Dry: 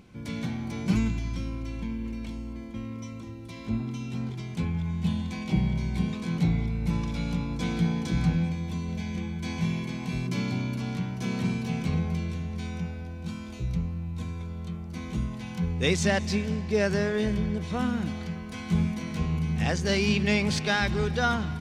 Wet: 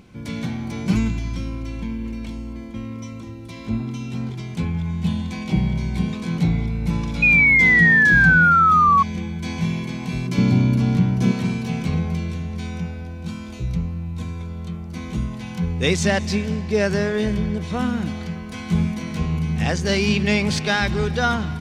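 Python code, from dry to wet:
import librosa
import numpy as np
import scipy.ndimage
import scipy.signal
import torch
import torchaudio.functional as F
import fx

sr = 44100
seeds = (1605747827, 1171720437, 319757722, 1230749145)

y = fx.spec_paint(x, sr, seeds[0], shape='fall', start_s=7.22, length_s=1.81, low_hz=1100.0, high_hz=2500.0, level_db=-19.0)
y = fx.low_shelf(y, sr, hz=490.0, db=9.5, at=(10.38, 11.32))
y = y * 10.0 ** (5.0 / 20.0)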